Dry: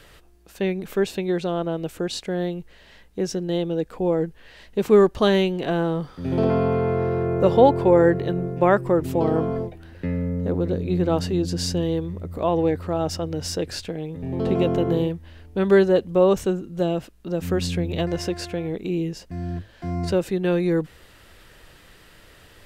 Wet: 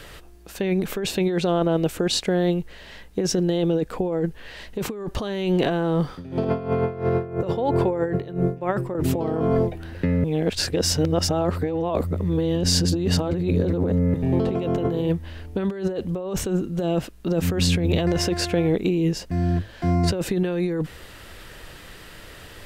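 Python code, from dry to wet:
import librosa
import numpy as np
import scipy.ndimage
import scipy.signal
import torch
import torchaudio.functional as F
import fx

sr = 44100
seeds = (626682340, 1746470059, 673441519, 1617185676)

y = fx.tremolo_db(x, sr, hz=3.0, depth_db=20, at=(6.12, 8.95))
y = fx.edit(y, sr, fx.reverse_span(start_s=10.24, length_s=3.9), tone=tone)
y = fx.over_compress(y, sr, threshold_db=-26.0, ratio=-1.0)
y = F.gain(torch.from_numpy(y), 4.0).numpy()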